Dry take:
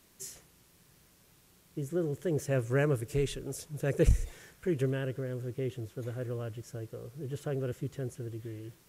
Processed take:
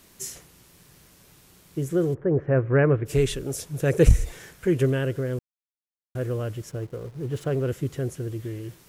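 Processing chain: 2.13–3.05 s: low-pass 1.4 kHz -> 2.5 kHz 24 dB/octave; 5.39–6.15 s: mute; 6.69–7.69 s: hysteresis with a dead band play -50.5 dBFS; trim +8.5 dB

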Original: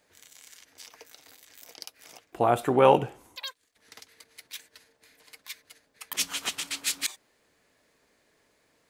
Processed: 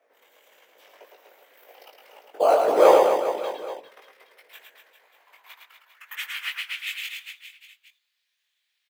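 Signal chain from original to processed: high-order bell 6.7 kHz -15 dB; in parallel at -7 dB: decimation with a swept rate 11×, swing 100% 0.42 Hz; on the sum: whisper effect; chorus 1.8 Hz, delay 18.5 ms, depth 2.1 ms; high-pass sweep 520 Hz -> 3.7 kHz, 4.43–7.47 s; on a send: reverse bouncing-ball echo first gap 110 ms, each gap 1.2×, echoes 5; on the sum: trim -1 dB

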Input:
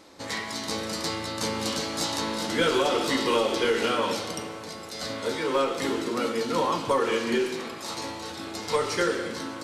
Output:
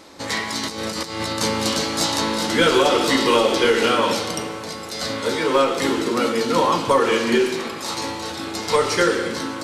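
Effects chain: de-hum 50.81 Hz, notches 15; 0.63–1.33 s: compressor with a negative ratio -34 dBFS, ratio -0.5; trim +7.5 dB

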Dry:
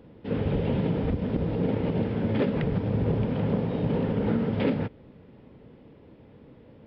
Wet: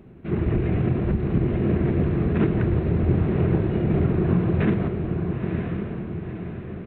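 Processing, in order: pitch shift -4.5 st; echo that smears into a reverb 968 ms, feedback 50%, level -5 dB; trim +4 dB

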